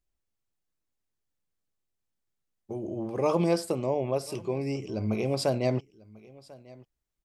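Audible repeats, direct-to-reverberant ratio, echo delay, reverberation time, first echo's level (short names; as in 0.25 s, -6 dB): 1, none, 1.044 s, none, -22.5 dB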